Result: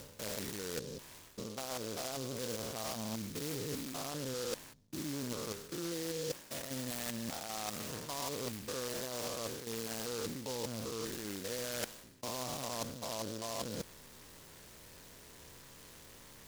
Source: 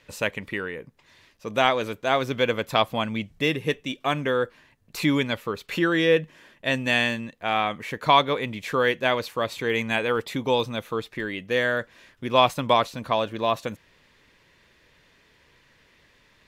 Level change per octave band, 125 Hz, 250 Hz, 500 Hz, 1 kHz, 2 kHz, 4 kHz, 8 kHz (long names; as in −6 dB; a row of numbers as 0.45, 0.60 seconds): −12.5, −13.5, −16.0, −20.5, −21.5, −13.5, +4.5 decibels